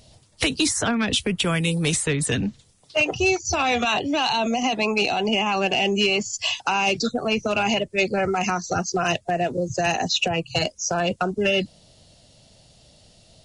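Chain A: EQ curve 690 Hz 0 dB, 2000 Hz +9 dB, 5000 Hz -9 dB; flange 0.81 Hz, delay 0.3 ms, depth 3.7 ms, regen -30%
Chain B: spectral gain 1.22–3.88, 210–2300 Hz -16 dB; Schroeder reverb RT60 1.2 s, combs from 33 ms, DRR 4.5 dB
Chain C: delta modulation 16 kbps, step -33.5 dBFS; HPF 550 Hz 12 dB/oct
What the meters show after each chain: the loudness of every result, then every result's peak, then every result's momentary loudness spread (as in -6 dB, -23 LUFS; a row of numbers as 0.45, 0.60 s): -24.0, -21.5, -31.0 LUFS; -8.5, -8.0, -20.5 dBFS; 6, 4, 14 LU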